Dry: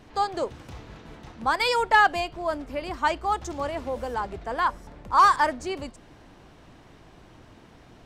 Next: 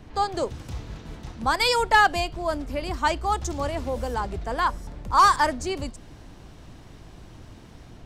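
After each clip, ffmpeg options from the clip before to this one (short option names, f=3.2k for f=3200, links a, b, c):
-filter_complex "[0:a]lowshelf=f=180:g=10.5,acrossover=split=320|3900[a][b][c];[c]dynaudnorm=f=110:g=5:m=7dB[d];[a][b][d]amix=inputs=3:normalize=0"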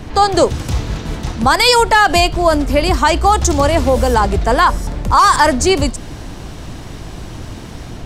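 -af "equalizer=f=9.4k:w=0.52:g=3,alimiter=level_in=17dB:limit=-1dB:release=50:level=0:latency=1,volume=-1dB"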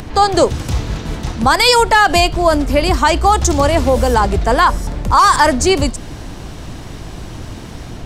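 -af "acompressor=mode=upward:threshold=-29dB:ratio=2.5"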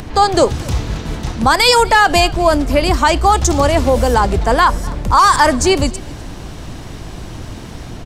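-af "aecho=1:1:250:0.075"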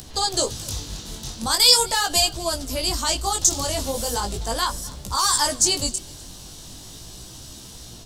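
-af "aexciter=amount=7.8:drive=1.8:freq=3.2k,flanger=delay=15:depth=7.5:speed=0.4,volume=-11.5dB"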